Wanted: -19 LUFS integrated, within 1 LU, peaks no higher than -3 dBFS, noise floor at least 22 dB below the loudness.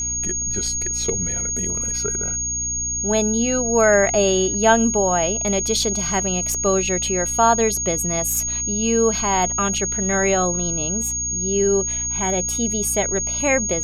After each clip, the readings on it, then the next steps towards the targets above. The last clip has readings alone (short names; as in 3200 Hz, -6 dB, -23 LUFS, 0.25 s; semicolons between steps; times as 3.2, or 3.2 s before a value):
hum 60 Hz; harmonics up to 300 Hz; hum level -32 dBFS; steady tone 6600 Hz; tone level -22 dBFS; loudness -19.0 LUFS; peak -3.0 dBFS; loudness target -19.0 LUFS
-> de-hum 60 Hz, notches 5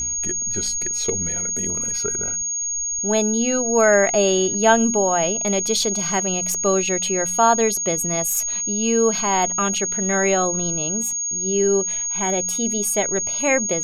hum none; steady tone 6600 Hz; tone level -22 dBFS
-> notch 6600 Hz, Q 30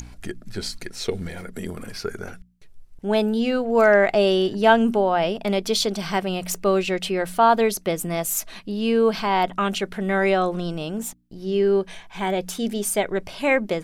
steady tone none; loudness -22.0 LUFS; peak -4.0 dBFS; loudness target -19.0 LUFS
-> gain +3 dB; limiter -3 dBFS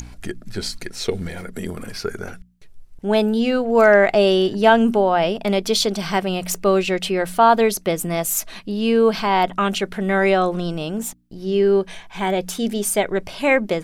loudness -19.0 LUFS; peak -3.0 dBFS; noise floor -42 dBFS